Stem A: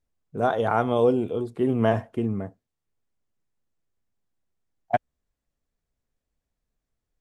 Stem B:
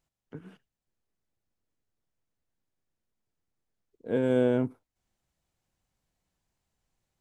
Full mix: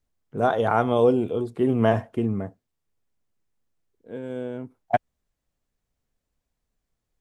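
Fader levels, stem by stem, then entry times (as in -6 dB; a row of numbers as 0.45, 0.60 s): +1.5, -8.0 dB; 0.00, 0.00 s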